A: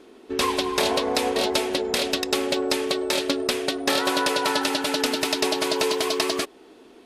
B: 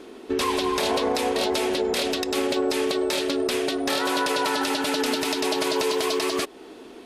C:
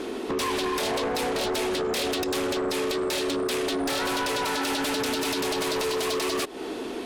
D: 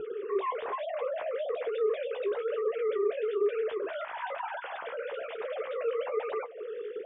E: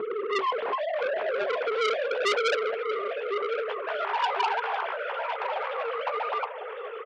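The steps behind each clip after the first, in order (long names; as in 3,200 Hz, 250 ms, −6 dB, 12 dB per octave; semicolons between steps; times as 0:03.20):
in parallel at +0.5 dB: downward compressor, threshold −31 dBFS, peak gain reduction 12.5 dB; on the sum: brickwall limiter −14.5 dBFS, peak gain reduction 9 dB
downward compressor 4 to 1, threshold −32 dBFS, peak gain reduction 10.5 dB; sine wavefolder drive 10 dB, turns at −20 dBFS; level −3.5 dB
three sine waves on the formant tracks; flanger 1.1 Hz, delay 8.3 ms, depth 9.2 ms, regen −37%; high-frequency loss of the air 470 metres
high-pass filter sweep 200 Hz → 860 Hz, 0:01.94–0:02.84; repeating echo 1,055 ms, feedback 23%, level −9 dB; saturating transformer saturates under 2,800 Hz; level +6 dB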